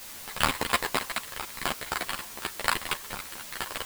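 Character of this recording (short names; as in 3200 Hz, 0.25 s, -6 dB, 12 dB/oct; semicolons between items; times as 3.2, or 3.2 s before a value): aliases and images of a low sample rate 6100 Hz, jitter 0%; tremolo triangle 0.52 Hz, depth 85%; a quantiser's noise floor 8-bit, dither triangular; a shimmering, thickened sound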